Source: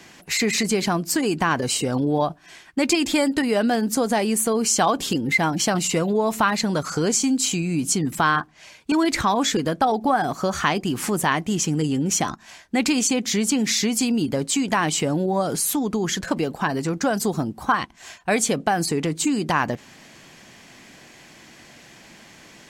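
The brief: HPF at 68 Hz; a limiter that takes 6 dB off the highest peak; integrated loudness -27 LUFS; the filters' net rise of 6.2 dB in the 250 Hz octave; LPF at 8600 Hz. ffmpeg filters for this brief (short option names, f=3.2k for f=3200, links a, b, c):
-af "highpass=68,lowpass=8.6k,equalizer=f=250:t=o:g=7.5,volume=-7dB,alimiter=limit=-17.5dB:level=0:latency=1"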